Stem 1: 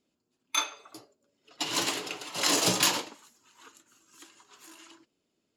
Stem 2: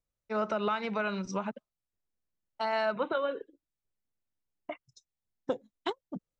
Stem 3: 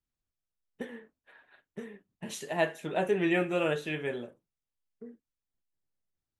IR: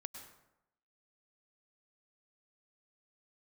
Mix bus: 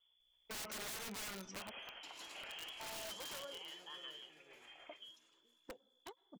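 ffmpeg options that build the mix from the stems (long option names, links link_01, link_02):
-filter_complex "[0:a]asoftclip=type=hard:threshold=-19.5dB,volume=-4.5dB,asplit=2[link_01][link_02];[link_02]volume=-17.5dB[link_03];[1:a]equalizer=frequency=3600:width_type=o:width=0.33:gain=-5,adelay=200,volume=-0.5dB,afade=type=out:start_time=1.09:duration=0.8:silence=0.223872,asplit=2[link_04][link_05];[link_05]volume=-18dB[link_06];[2:a]aeval=exprs='val(0)+0.000447*(sin(2*PI*60*n/s)+sin(2*PI*2*60*n/s)/2+sin(2*PI*3*60*n/s)/3+sin(2*PI*4*60*n/s)/4+sin(2*PI*5*60*n/s)/5)':channel_layout=same,volume=-8dB,asplit=3[link_07][link_08][link_09];[link_08]volume=-20.5dB[link_10];[link_09]volume=-22.5dB[link_11];[link_01][link_07]amix=inputs=2:normalize=0,lowpass=frequency=3000:width_type=q:width=0.5098,lowpass=frequency=3000:width_type=q:width=0.6013,lowpass=frequency=3000:width_type=q:width=0.9,lowpass=frequency=3000:width_type=q:width=2.563,afreqshift=-3500,acompressor=threshold=-52dB:ratio=2,volume=0dB[link_12];[3:a]atrim=start_sample=2205[link_13];[link_06][link_10]amix=inputs=2:normalize=0[link_14];[link_14][link_13]afir=irnorm=-1:irlink=0[link_15];[link_03][link_11]amix=inputs=2:normalize=0,aecho=0:1:426|852|1278|1704|2130:1|0.34|0.116|0.0393|0.0134[link_16];[link_04][link_12][link_15][link_16]amix=inputs=4:normalize=0,equalizer=frequency=140:width=0.6:gain=-9,aeval=exprs='(mod(53.1*val(0)+1,2)-1)/53.1':channel_layout=same,alimiter=level_in=16dB:limit=-24dB:level=0:latency=1:release=360,volume=-16dB"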